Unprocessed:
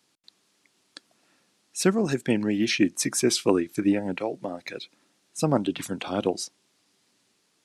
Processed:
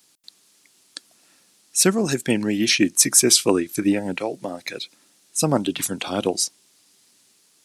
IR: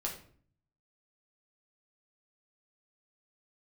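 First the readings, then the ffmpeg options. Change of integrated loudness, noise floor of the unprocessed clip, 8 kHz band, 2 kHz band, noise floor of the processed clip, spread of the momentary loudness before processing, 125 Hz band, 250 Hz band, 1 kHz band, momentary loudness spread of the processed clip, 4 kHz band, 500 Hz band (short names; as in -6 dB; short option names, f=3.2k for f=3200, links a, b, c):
+6.0 dB, -70 dBFS, +12.5 dB, +5.0 dB, -60 dBFS, 14 LU, +2.5 dB, +2.5 dB, +3.0 dB, 17 LU, +9.0 dB, +2.5 dB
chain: -af "crystalizer=i=2.5:c=0,volume=2.5dB"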